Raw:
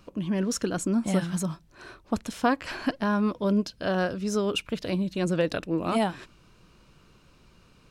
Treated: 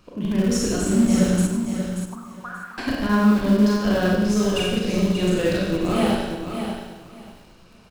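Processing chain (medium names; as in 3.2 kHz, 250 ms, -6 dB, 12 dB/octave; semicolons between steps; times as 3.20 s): Schroeder reverb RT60 0.95 s, combs from 30 ms, DRR -4 dB; in parallel at -9 dB: Schmitt trigger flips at -17.5 dBFS; 1.47–2.78 s: on the sum: auto-wah 700–1400 Hz, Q 13, up, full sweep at -17.5 dBFS; dynamic bell 950 Hz, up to -5 dB, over -33 dBFS, Q 0.76; on a send: feedback delay 584 ms, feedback 19%, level -7.5 dB; on the sum: bit-crushed delay 99 ms, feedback 35%, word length 8-bit, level -9 dB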